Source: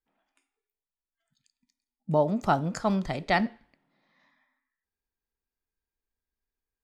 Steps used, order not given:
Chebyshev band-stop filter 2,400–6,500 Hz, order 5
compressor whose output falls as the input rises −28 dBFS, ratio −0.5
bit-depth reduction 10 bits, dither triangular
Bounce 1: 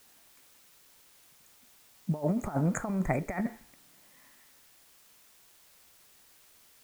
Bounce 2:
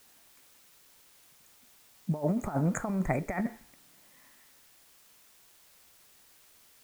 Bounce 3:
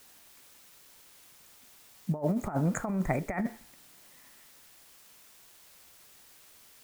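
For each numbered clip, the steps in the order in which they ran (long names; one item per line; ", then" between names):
compressor whose output falls as the input rises, then Chebyshev band-stop filter, then bit-depth reduction
Chebyshev band-stop filter, then compressor whose output falls as the input rises, then bit-depth reduction
Chebyshev band-stop filter, then bit-depth reduction, then compressor whose output falls as the input rises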